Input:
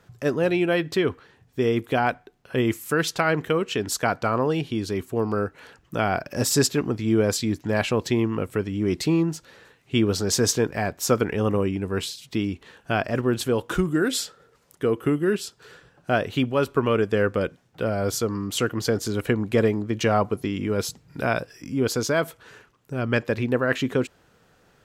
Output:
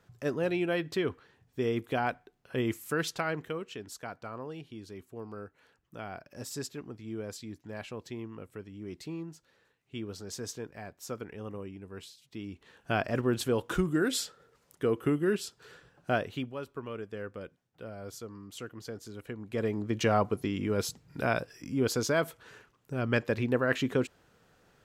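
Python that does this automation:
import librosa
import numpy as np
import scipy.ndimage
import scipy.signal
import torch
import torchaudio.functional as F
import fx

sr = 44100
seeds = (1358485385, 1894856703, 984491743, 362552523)

y = fx.gain(x, sr, db=fx.line((3.06, -8.0), (3.94, -18.0), (12.29, -18.0), (12.91, -5.5), (16.1, -5.5), (16.64, -18.0), (19.36, -18.0), (19.86, -5.0)))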